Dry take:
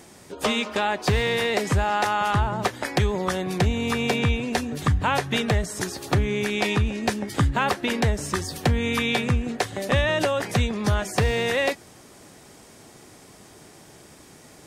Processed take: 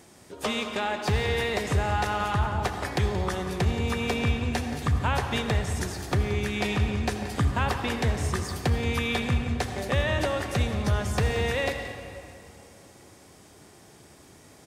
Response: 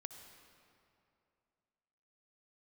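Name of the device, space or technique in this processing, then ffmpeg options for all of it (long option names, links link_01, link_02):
cave: -filter_complex "[0:a]equalizer=frequency=83:width=3.2:gain=5.5,aecho=1:1:177:0.2[link_01];[1:a]atrim=start_sample=2205[link_02];[link_01][link_02]afir=irnorm=-1:irlink=0"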